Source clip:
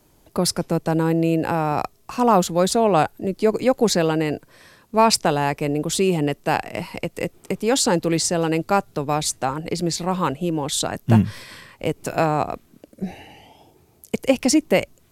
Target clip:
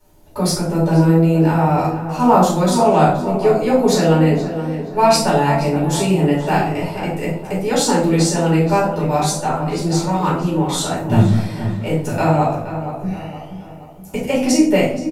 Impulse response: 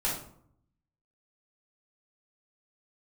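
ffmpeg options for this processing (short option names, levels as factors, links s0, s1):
-filter_complex "[0:a]asplit=2[s0][s1];[s1]adelay=12,volume=0.299[s2];[s0][s2]amix=inputs=2:normalize=0,asplit=2[s3][s4];[s4]adelay=473,lowpass=f=2300:p=1,volume=0.316,asplit=2[s5][s6];[s6]adelay=473,lowpass=f=2300:p=1,volume=0.48,asplit=2[s7][s8];[s8]adelay=473,lowpass=f=2300:p=1,volume=0.48,asplit=2[s9][s10];[s10]adelay=473,lowpass=f=2300:p=1,volume=0.48,asplit=2[s11][s12];[s12]adelay=473,lowpass=f=2300:p=1,volume=0.48[s13];[s3][s5][s7][s9][s11][s13]amix=inputs=6:normalize=0[s14];[1:a]atrim=start_sample=2205[s15];[s14][s15]afir=irnorm=-1:irlink=0,volume=0.562"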